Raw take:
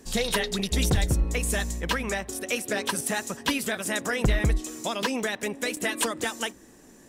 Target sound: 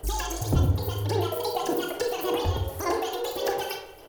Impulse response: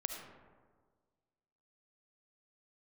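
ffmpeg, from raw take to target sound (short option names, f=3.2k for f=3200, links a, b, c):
-filter_complex "[0:a]equalizer=f=120:t=o:w=0.35:g=-10.5,acrossover=split=470[a][b];[a]dynaudnorm=f=170:g=9:m=7.5dB[c];[b]alimiter=limit=-19dB:level=0:latency=1:release=457[d];[c][d]amix=inputs=2:normalize=0,acompressor=threshold=-25dB:ratio=5,aphaser=in_gain=1:out_gain=1:delay=3.9:decay=0.66:speed=1:type=sinusoidal,aecho=1:1:482:0.0794[e];[1:a]atrim=start_sample=2205,asetrate=61740,aresample=44100[f];[e][f]afir=irnorm=-1:irlink=0,asetrate=76440,aresample=44100"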